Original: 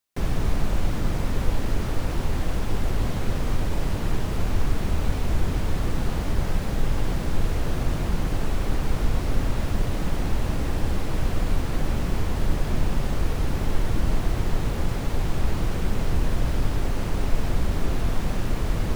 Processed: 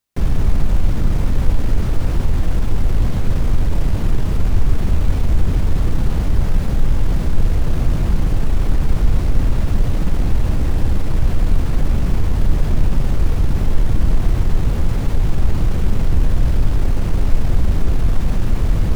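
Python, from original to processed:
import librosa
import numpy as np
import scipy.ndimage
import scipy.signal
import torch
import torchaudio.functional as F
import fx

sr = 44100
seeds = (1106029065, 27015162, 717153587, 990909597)

p1 = fx.low_shelf(x, sr, hz=220.0, db=9.0)
p2 = np.clip(p1, -10.0 ** (-15.0 / 20.0), 10.0 ** (-15.0 / 20.0))
p3 = p1 + F.gain(torch.from_numpy(p2), -5.0).numpy()
y = F.gain(torch.from_numpy(p3), -2.0).numpy()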